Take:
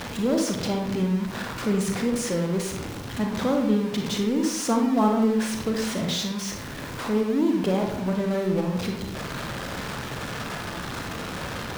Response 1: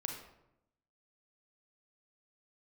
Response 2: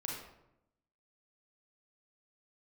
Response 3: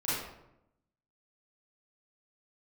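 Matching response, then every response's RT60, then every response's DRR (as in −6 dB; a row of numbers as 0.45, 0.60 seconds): 1; 0.85, 0.85, 0.85 seconds; 2.0, −2.5, −11.5 decibels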